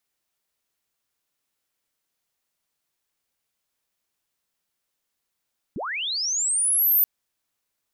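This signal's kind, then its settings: chirp linear 130 Hz -> 14000 Hz -28 dBFS -> -15 dBFS 1.28 s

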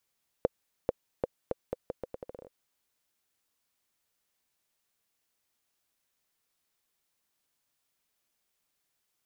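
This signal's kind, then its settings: bouncing ball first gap 0.44 s, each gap 0.79, 509 Hz, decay 25 ms -11.5 dBFS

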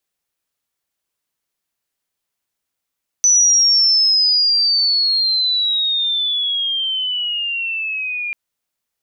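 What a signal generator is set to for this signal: chirp logarithmic 6000 Hz -> 2400 Hz -9 dBFS -> -21 dBFS 5.09 s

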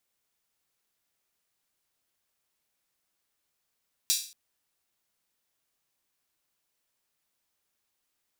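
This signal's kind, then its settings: open hi-hat length 0.23 s, high-pass 4300 Hz, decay 0.42 s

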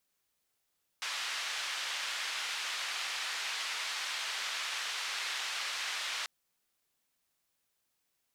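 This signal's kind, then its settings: noise band 1200–4000 Hz, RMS -37 dBFS 5.24 s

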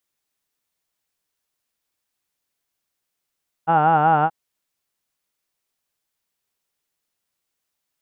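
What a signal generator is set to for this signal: formant vowel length 0.63 s, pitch 159 Hz, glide -0.5 st, F1 800 Hz, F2 1400 Hz, F3 2800 Hz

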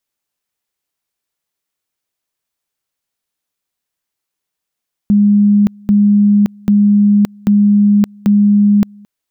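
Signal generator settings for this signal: two-level tone 205 Hz -6 dBFS, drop 29 dB, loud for 0.57 s, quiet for 0.22 s, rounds 5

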